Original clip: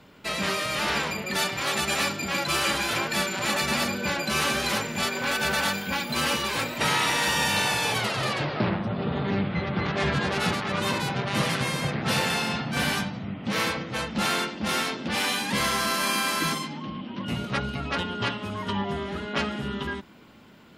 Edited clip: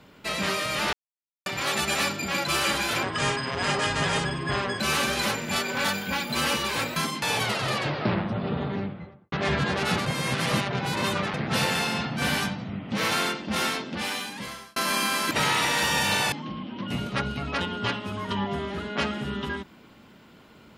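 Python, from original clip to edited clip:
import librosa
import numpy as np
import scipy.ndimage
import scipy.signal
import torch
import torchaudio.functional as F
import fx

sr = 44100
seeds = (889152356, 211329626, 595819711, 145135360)

y = fx.studio_fade_out(x, sr, start_s=8.97, length_s=0.9)
y = fx.edit(y, sr, fx.silence(start_s=0.93, length_s=0.53),
    fx.speed_span(start_s=3.03, length_s=1.24, speed=0.7),
    fx.cut(start_s=5.32, length_s=0.33),
    fx.swap(start_s=6.76, length_s=1.01, other_s=16.44, other_length_s=0.26),
    fx.reverse_span(start_s=10.61, length_s=1.28),
    fx.cut(start_s=13.66, length_s=0.58),
    fx.fade_out_span(start_s=14.81, length_s=1.08), tone=tone)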